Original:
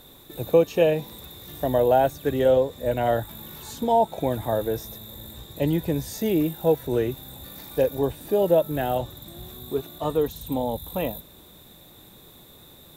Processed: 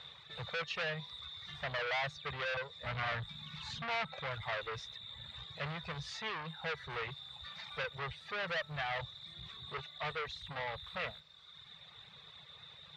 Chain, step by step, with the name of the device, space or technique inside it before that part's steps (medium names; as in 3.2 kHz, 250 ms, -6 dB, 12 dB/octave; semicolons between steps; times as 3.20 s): 2.84–4.12 s: resonant low shelf 270 Hz +7 dB, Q 3; reverb removal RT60 1.2 s; scooped metal amplifier (valve stage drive 31 dB, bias 0.3; cabinet simulation 100–4100 Hz, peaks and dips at 150 Hz +7 dB, 290 Hz -7 dB, 460 Hz +4 dB, 1.2 kHz +5 dB, 2 kHz +5 dB; amplifier tone stack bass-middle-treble 10-0-10); trim +6.5 dB